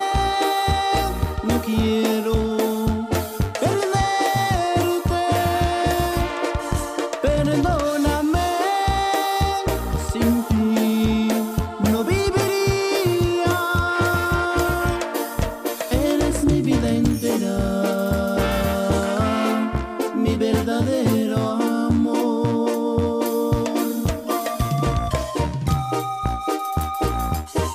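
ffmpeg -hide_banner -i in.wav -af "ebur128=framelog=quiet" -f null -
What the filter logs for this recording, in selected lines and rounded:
Integrated loudness:
  I:         -21.2 LUFS
  Threshold: -31.2 LUFS
Loudness range:
  LRA:         1.9 LU
  Threshold: -41.1 LUFS
  LRA low:   -22.1 LUFS
  LRA high:  -20.2 LUFS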